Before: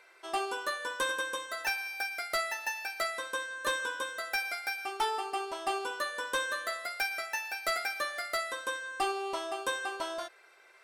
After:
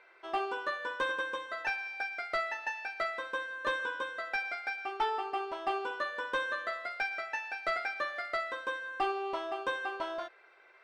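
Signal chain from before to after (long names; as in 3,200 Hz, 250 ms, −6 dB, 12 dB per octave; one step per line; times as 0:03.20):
low-pass filter 2,800 Hz 12 dB per octave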